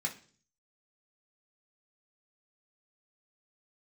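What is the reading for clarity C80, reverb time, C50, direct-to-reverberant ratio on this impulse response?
18.0 dB, 0.45 s, 12.5 dB, -1.5 dB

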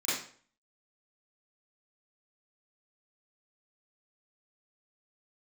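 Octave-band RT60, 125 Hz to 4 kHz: 0.50, 0.50, 0.50, 0.45, 0.45, 0.40 s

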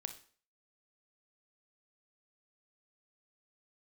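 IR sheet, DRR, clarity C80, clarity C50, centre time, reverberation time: 8.0 dB, 16.5 dB, 11.0 dB, 8 ms, 0.45 s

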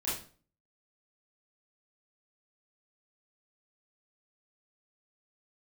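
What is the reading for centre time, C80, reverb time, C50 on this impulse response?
46 ms, 9.5 dB, 0.40 s, 3.0 dB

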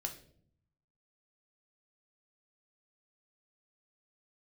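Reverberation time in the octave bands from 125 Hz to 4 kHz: 1.2, 0.95, 0.70, 0.45, 0.45, 0.45 s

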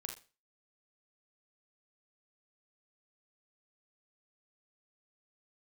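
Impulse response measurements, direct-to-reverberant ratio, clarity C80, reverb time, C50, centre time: 2.5 dB, 14.0 dB, not exponential, 7.0 dB, 21 ms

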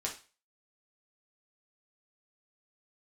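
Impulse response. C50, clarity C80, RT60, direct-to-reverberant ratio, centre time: 9.5 dB, 16.0 dB, 0.35 s, -2.0 dB, 18 ms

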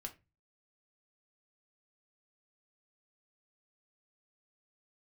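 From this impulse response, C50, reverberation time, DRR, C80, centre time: 16.0 dB, 0.25 s, 2.0 dB, 23.5 dB, 9 ms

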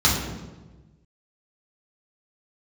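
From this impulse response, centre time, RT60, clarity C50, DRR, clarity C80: 53 ms, 1.2 s, 3.0 dB, -6.5 dB, 5.5 dB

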